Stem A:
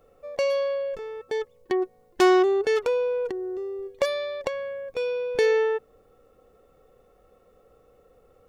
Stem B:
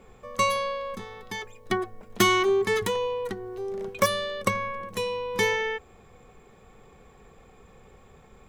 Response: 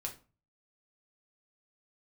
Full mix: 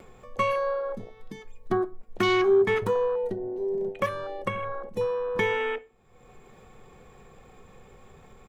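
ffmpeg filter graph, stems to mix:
-filter_complex "[0:a]volume=0.1[s0];[1:a]afwtdn=0.0355,alimiter=limit=0.158:level=0:latency=1:release=272,acompressor=mode=upward:threshold=0.0126:ratio=2.5,adelay=2,volume=0.891,asplit=2[s1][s2];[s2]volume=0.501[s3];[2:a]atrim=start_sample=2205[s4];[s3][s4]afir=irnorm=-1:irlink=0[s5];[s0][s1][s5]amix=inputs=3:normalize=0"

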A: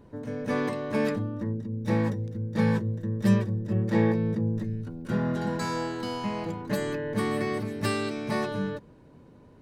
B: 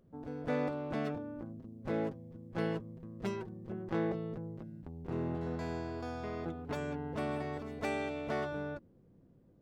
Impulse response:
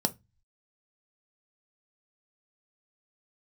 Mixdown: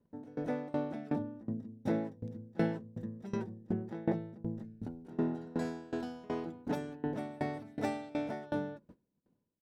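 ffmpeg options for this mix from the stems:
-filter_complex "[0:a]acompressor=threshold=0.0251:ratio=2,alimiter=level_in=1.26:limit=0.0631:level=0:latency=1,volume=0.794,volume=0.562[s0];[1:a]volume=-1,adelay=0.3,volume=0.708,asplit=2[s1][s2];[s2]volume=0.668[s3];[2:a]atrim=start_sample=2205[s4];[s3][s4]afir=irnorm=-1:irlink=0[s5];[s0][s1][s5]amix=inputs=3:normalize=0,agate=range=0.126:threshold=0.00355:ratio=16:detection=peak,aeval=exprs='val(0)*pow(10,-23*if(lt(mod(2.7*n/s,1),2*abs(2.7)/1000),1-mod(2.7*n/s,1)/(2*abs(2.7)/1000),(mod(2.7*n/s,1)-2*abs(2.7)/1000)/(1-2*abs(2.7)/1000))/20)':c=same"

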